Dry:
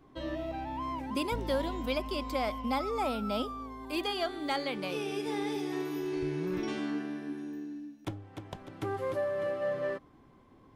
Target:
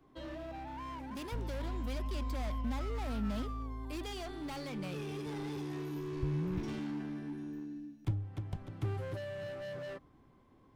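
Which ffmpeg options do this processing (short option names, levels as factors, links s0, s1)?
-filter_complex "[0:a]acrossover=split=150[s0][s1];[s0]dynaudnorm=f=370:g=11:m=6.31[s2];[s1]asoftclip=type=hard:threshold=0.0158[s3];[s2][s3]amix=inputs=2:normalize=0,volume=0.531"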